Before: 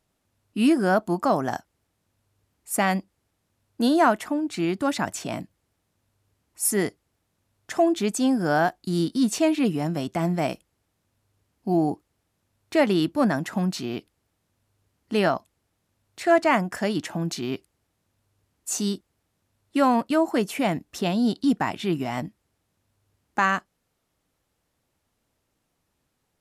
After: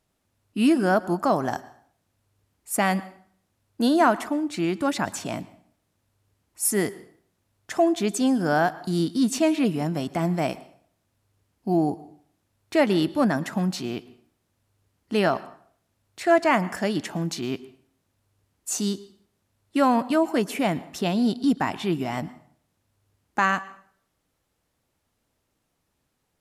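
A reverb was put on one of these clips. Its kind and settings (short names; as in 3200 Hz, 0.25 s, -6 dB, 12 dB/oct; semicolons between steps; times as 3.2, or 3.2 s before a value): plate-style reverb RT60 0.57 s, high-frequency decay 0.8×, pre-delay 0.1 s, DRR 18 dB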